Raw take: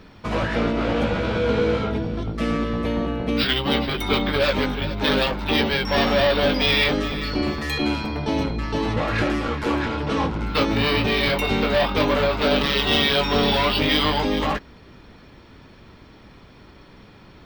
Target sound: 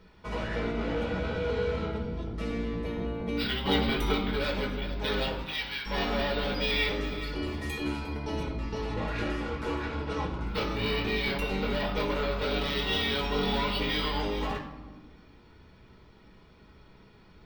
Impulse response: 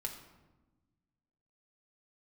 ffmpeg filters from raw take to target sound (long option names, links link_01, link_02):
-filter_complex "[0:a]asplit=3[link_01][link_02][link_03];[link_01]afade=type=out:start_time=3.64:duration=0.02[link_04];[link_02]acontrast=46,afade=type=in:start_time=3.64:duration=0.02,afade=type=out:start_time=4.11:duration=0.02[link_05];[link_03]afade=type=in:start_time=4.11:duration=0.02[link_06];[link_04][link_05][link_06]amix=inputs=3:normalize=0,asettb=1/sr,asplit=3[link_07][link_08][link_09];[link_07]atrim=end=5.434[link_10];[link_08]atrim=start=5.43:end=5.86,asetpts=PTS-STARTPTS,afade=type=in:duration=0.004:curve=qsin,afade=type=out:start_time=0.426:duration=0.004:curve=qsin,highpass=1400[link_11];[link_09]atrim=start=5.856[link_12];[link_10][link_11]acrossfade=duration=0.004:curve1=hsin:curve2=qsin[link_13];[link_13][link_12]acrossfade=duration=0.004:curve1=qsin:curve2=hsin,asettb=1/sr,asplit=3[link_14][link_15][link_16];[link_14]atrim=end=7.134[link_17];[link_15]atrim=start=7.13:end=8.43,asetpts=PTS-STARTPTS,afade=type=in:duration=0.004:curve=qsin,afade=type=out:start_time=1.296:duration=0.004:curve=qsin,equalizer=frequency=10000:width=1.5:gain=7[link_18];[link_16]atrim=start=8.426[link_19];[link_17][link_18]acrossfade=duration=0.004:curve1=hsin:curve2=qsin[link_20];[link_20][link_19]acrossfade=duration=0.004:curve1=qsin:curve2=hsin[link_21];[1:a]atrim=start_sample=2205[link_22];[link_21][link_22]afir=irnorm=-1:irlink=0,volume=-9dB"